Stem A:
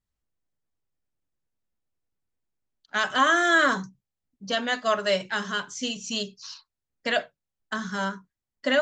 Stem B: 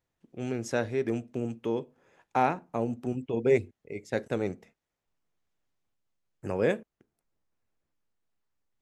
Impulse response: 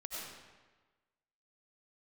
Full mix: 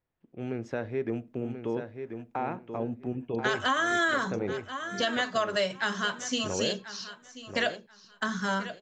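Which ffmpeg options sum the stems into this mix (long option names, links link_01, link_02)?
-filter_complex "[0:a]adelay=500,volume=0.5dB,asplit=2[link_01][link_02];[link_02]volume=-16.5dB[link_03];[1:a]lowpass=2800,alimiter=limit=-18dB:level=0:latency=1:release=117,volume=-1.5dB,asplit=2[link_04][link_05];[link_05]volume=-8dB[link_06];[link_03][link_06]amix=inputs=2:normalize=0,aecho=0:1:1035|2070|3105:1|0.19|0.0361[link_07];[link_01][link_04][link_07]amix=inputs=3:normalize=0,acompressor=threshold=-23dB:ratio=10"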